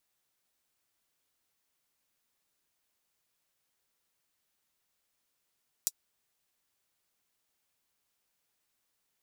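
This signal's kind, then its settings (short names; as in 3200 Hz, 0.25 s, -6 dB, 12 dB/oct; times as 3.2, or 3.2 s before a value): closed hi-hat, high-pass 5900 Hz, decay 0.05 s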